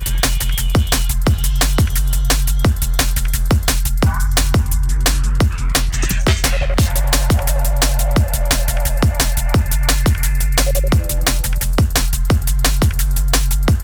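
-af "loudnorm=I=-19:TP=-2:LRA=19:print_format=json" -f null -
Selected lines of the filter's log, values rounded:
"input_i" : "-16.8",
"input_tp" : "-5.3",
"input_lra" : "0.5",
"input_thresh" : "-26.8",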